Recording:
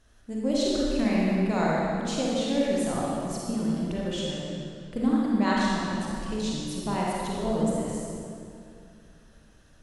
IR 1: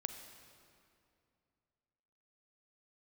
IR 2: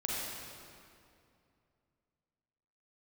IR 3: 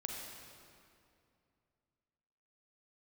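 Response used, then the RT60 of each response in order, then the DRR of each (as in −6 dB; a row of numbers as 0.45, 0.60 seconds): 2; 2.5, 2.5, 2.5 seconds; 7.0, −5.5, −0.5 decibels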